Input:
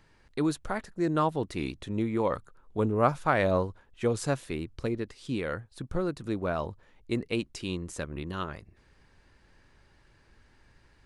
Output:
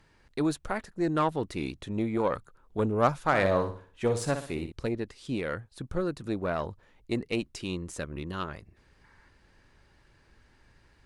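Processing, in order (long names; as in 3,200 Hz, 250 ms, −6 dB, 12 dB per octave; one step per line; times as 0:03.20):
harmonic generator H 6 −25 dB, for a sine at −10 dBFS
0:03.26–0:04.72: flutter between parallel walls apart 10.5 metres, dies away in 0.42 s
0:09.04–0:09.28: gain on a spectral selection 820–2,300 Hz +7 dB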